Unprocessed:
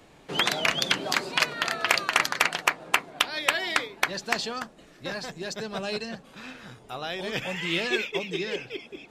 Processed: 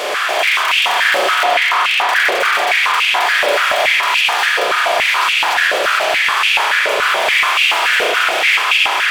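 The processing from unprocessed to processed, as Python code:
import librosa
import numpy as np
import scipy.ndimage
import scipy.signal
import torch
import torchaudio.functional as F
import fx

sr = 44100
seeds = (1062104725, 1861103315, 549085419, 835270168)

y = fx.bin_compress(x, sr, power=0.2)
y = fx.high_shelf(y, sr, hz=3800.0, db=-11.0, at=(1.43, 2.09))
y = 10.0 ** (-23.5 / 20.0) * np.tanh(y / 10.0 ** (-23.5 / 20.0))
y = fx.vibrato(y, sr, rate_hz=11.0, depth_cents=33.0)
y = y + 10.0 ** (-8.0 / 20.0) * np.pad(y, (int(591 * sr / 1000.0), 0))[:len(y)]
y = fx.rev_spring(y, sr, rt60_s=2.9, pass_ms=(33,), chirp_ms=65, drr_db=-4.0)
y = fx.filter_held_highpass(y, sr, hz=7.0, low_hz=540.0, high_hz=2600.0)
y = y * librosa.db_to_amplitude(2.5)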